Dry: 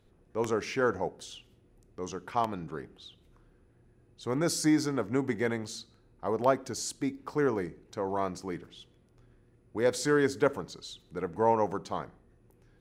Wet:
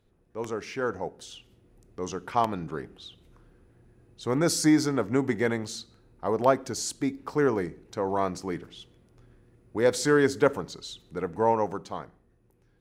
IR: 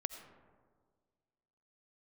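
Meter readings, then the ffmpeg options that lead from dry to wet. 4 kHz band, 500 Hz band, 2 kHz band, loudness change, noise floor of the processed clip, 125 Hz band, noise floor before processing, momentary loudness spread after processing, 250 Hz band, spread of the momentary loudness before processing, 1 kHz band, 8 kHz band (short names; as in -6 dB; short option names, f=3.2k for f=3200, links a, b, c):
+3.5 dB, +3.0 dB, +3.0 dB, +3.5 dB, -65 dBFS, +3.5 dB, -64 dBFS, 17 LU, +4.0 dB, 15 LU, +3.0 dB, +4.0 dB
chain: -af "dynaudnorm=f=130:g=21:m=8dB,volume=-3.5dB"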